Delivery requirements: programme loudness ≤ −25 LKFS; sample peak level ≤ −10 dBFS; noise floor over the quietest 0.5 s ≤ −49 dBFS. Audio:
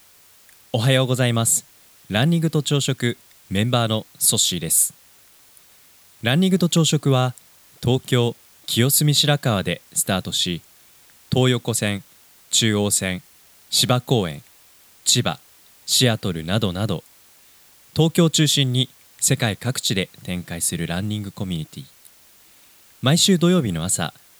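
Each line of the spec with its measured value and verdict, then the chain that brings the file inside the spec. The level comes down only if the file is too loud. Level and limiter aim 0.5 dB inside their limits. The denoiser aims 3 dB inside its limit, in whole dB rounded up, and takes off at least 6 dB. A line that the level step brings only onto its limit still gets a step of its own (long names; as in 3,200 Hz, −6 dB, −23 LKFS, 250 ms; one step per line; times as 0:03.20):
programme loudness −20.0 LKFS: out of spec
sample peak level −3.5 dBFS: out of spec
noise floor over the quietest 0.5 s −52 dBFS: in spec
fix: level −5.5 dB
brickwall limiter −10.5 dBFS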